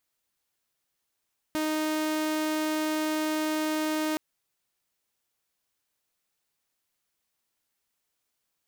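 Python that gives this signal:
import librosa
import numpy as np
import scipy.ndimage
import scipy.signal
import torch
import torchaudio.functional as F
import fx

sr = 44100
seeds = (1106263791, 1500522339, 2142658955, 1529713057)

y = 10.0 ** (-23.5 / 20.0) * (2.0 * np.mod(310.0 * (np.arange(round(2.62 * sr)) / sr), 1.0) - 1.0)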